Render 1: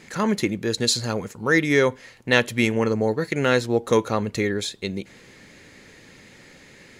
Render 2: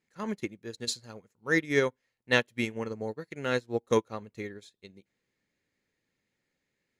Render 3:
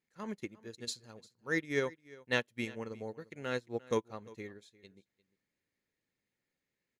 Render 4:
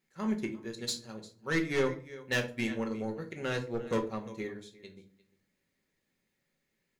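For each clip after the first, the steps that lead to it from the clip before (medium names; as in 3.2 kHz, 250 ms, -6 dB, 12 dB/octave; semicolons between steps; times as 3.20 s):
upward expansion 2.5:1, over -34 dBFS; trim -4.5 dB
delay 350 ms -21 dB; trim -7 dB
saturation -30 dBFS, distortion -10 dB; simulated room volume 250 m³, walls furnished, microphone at 1.1 m; trim +5.5 dB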